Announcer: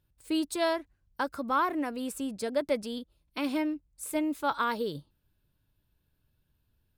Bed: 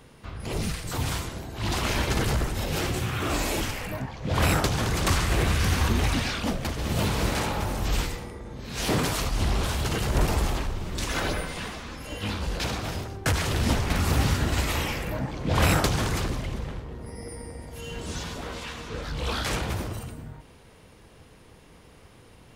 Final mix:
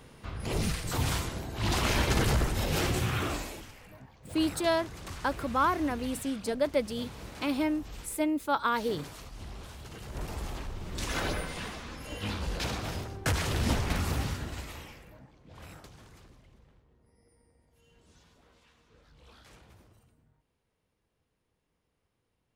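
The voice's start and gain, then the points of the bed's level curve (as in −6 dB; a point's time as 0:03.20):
4.05 s, +1.0 dB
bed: 0:03.18 −1 dB
0:03.63 −18.5 dB
0:09.89 −18.5 dB
0:11.09 −4 dB
0:13.89 −4 dB
0:15.49 −27.5 dB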